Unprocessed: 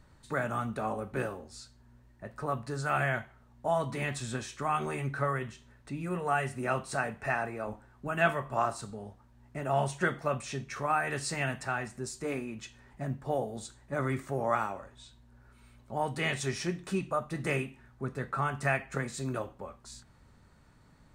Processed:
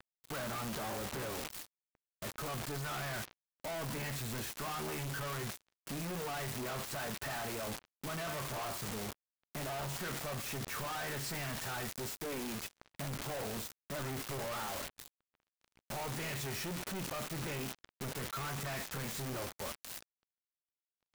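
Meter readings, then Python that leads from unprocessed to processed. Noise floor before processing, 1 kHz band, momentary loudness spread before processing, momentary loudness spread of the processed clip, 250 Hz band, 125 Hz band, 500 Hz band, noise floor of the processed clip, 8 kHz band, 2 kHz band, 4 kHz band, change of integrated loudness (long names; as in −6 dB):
−60 dBFS, −9.5 dB, 14 LU, 6 LU, −6.5 dB, −6.5 dB, −8.5 dB, below −85 dBFS, +1.5 dB, −8.0 dB, +2.0 dB, −6.5 dB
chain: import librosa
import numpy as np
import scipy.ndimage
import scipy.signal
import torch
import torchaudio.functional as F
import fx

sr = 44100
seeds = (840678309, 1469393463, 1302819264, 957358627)

y = fx.lowpass(x, sr, hz=3000.0, slope=6)
y = fx.leveller(y, sr, passes=5)
y = np.clip(10.0 ** (31.5 / 20.0) * y, -1.0, 1.0) / 10.0 ** (31.5 / 20.0)
y = fx.power_curve(y, sr, exponent=3.0)
y = (np.mod(10.0 ** (35.5 / 20.0) * y + 1.0, 2.0) - 1.0) / 10.0 ** (35.5 / 20.0)
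y = y * librosa.db_to_amplitude(4.5)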